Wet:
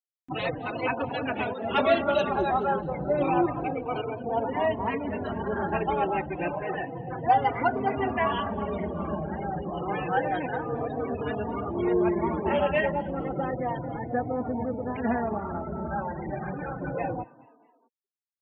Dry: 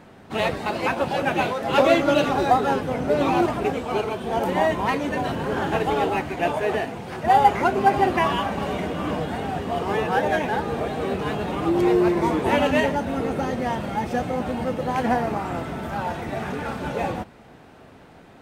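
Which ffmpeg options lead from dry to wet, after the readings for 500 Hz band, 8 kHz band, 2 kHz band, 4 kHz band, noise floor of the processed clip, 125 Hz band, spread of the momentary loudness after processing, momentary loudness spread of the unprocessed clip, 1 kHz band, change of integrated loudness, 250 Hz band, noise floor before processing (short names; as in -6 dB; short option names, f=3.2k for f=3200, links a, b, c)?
-5.0 dB, under -25 dB, -6.0 dB, -8.5 dB, -65 dBFS, -4.5 dB, 8 LU, 10 LU, -5.5 dB, -5.5 dB, -5.5 dB, -47 dBFS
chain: -filter_complex "[0:a]afftfilt=real='re*gte(hypot(re,im),0.0447)':imag='im*gte(hypot(re,im),0.0447)':win_size=1024:overlap=0.75,acompressor=mode=upward:threshold=-22dB:ratio=2.5,asplit=2[a][b];[b]asplit=3[c][d][e];[c]adelay=215,afreqshift=56,volume=-21.5dB[f];[d]adelay=430,afreqshift=112,volume=-27.9dB[g];[e]adelay=645,afreqshift=168,volume=-34.3dB[h];[f][g][h]amix=inputs=3:normalize=0[i];[a][i]amix=inputs=2:normalize=0,asplit=2[j][k];[k]adelay=3.4,afreqshift=-0.3[l];[j][l]amix=inputs=2:normalize=1,volume=-2dB"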